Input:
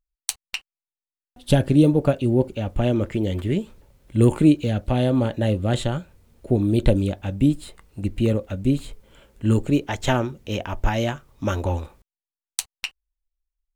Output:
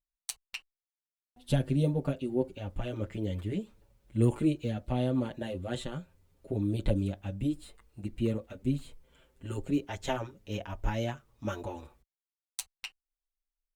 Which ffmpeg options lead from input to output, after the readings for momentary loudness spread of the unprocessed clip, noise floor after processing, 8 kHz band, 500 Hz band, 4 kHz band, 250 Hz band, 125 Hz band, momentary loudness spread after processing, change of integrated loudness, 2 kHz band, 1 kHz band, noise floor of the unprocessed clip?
13 LU, under -85 dBFS, -11.0 dB, -11.0 dB, -11.0 dB, -11.5 dB, -10.5 dB, 14 LU, -11.0 dB, -11.5 dB, -11.0 dB, under -85 dBFS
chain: -filter_complex "[0:a]asplit=2[a][b];[b]adelay=6.9,afreqshift=0.28[c];[a][c]amix=inputs=2:normalize=1,volume=-8dB"

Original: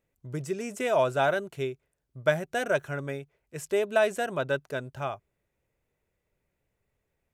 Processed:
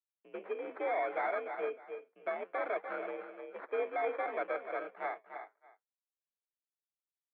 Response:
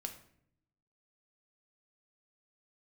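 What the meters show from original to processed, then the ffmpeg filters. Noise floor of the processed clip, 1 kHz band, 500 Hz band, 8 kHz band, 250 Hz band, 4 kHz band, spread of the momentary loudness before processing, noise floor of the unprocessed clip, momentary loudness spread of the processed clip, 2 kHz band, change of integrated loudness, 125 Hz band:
under -85 dBFS, -4.5 dB, -8.5 dB, under -35 dB, -13.0 dB, under -15 dB, 14 LU, -81 dBFS, 14 LU, -9.0 dB, -8.5 dB, under -35 dB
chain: -filter_complex "[0:a]alimiter=limit=-18dB:level=0:latency=1,asplit=2[a][b];[b]adelay=310,highpass=300,lowpass=3.4k,asoftclip=type=hard:threshold=-26.5dB,volume=-10dB[c];[a][c]amix=inputs=2:normalize=0,asoftclip=type=hard:threshold=-25dB,flanger=delay=5.1:depth=6.8:regen=-75:speed=1.4:shape=triangular,acrusher=samples=16:mix=1:aa=0.000001,asplit=2[d][e];[e]aecho=0:1:295:0.316[f];[d][f]amix=inputs=2:normalize=0,agate=range=-33dB:threshold=-54dB:ratio=3:detection=peak,highpass=f=290:t=q:w=0.5412,highpass=f=290:t=q:w=1.307,lowpass=f=2.4k:t=q:w=0.5176,lowpass=f=2.4k:t=q:w=0.7071,lowpass=f=2.4k:t=q:w=1.932,afreqshift=55"

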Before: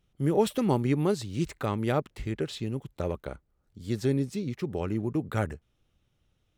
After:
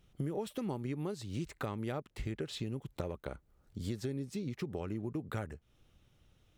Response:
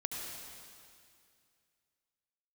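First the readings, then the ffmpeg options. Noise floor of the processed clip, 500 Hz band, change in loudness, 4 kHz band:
-70 dBFS, -11.0 dB, -10.0 dB, -6.5 dB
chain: -af "acompressor=threshold=-40dB:ratio=8,volume=5dB"

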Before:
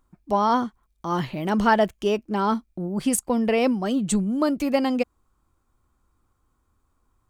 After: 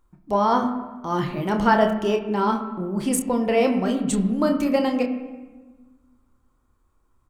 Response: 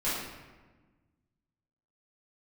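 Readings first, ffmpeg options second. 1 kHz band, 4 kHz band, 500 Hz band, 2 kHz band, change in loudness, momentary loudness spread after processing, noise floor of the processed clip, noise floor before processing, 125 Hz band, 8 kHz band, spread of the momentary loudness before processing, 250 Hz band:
+1.0 dB, 0.0 dB, +2.0 dB, +0.5 dB, +1.0 dB, 8 LU, -66 dBFS, -71 dBFS, +1.5 dB, -1.0 dB, 8 LU, +1.0 dB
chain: -filter_complex "[0:a]asplit=2[a][b];[b]adelay=28,volume=-8dB[c];[a][c]amix=inputs=2:normalize=0,asplit=2[d][e];[1:a]atrim=start_sample=2205,lowpass=2.8k[f];[e][f]afir=irnorm=-1:irlink=0,volume=-12.5dB[g];[d][g]amix=inputs=2:normalize=0,volume=-1.5dB"

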